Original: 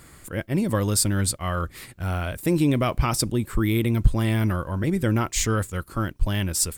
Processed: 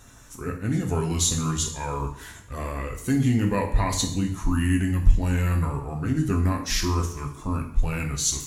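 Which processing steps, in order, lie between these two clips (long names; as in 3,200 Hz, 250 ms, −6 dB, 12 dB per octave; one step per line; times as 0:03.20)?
spectral magnitudes quantised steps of 15 dB
speed change −20%
coupled-rooms reverb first 0.55 s, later 1.6 s, DRR 2 dB
level −3 dB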